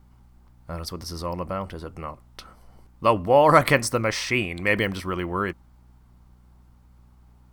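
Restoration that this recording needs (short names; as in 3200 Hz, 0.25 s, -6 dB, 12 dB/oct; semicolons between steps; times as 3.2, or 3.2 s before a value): de-hum 60.9 Hz, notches 4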